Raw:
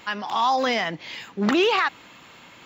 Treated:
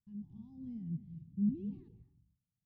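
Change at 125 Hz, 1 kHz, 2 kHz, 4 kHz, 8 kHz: -3.5 dB, under -40 dB, under -40 dB, under -40 dB, under -35 dB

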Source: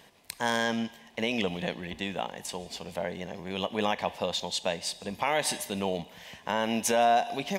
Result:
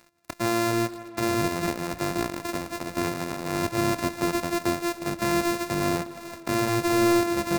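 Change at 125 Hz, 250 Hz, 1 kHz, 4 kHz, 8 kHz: +8.5, +8.5, +1.5, -1.5, +2.0 dB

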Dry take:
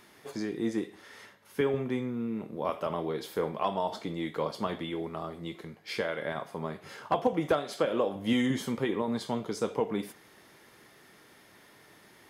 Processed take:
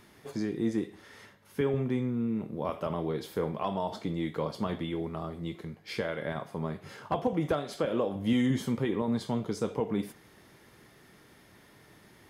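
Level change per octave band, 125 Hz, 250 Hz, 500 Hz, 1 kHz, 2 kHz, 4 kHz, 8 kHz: +5.0, +1.5, -1.5, -3.0, -3.0, -3.0, -2.5 dB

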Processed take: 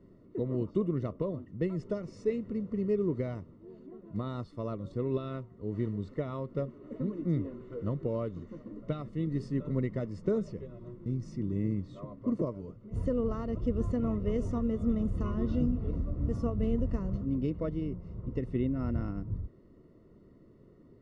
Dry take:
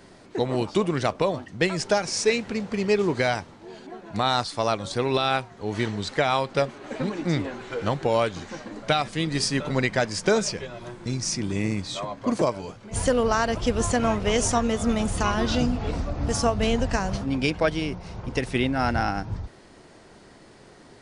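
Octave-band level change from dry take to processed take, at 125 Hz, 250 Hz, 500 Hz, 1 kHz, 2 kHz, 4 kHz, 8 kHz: -4.0 dB, -5.0 dB, -10.0 dB, -21.0 dB, -25.5 dB, under -25 dB, under -30 dB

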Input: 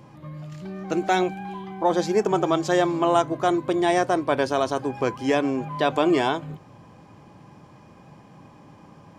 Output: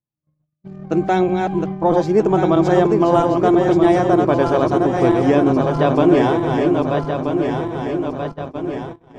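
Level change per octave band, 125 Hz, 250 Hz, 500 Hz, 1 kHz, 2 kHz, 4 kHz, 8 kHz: +12.0 dB, +9.5 dB, +8.0 dB, +5.0 dB, +2.0 dB, -1.0 dB, n/a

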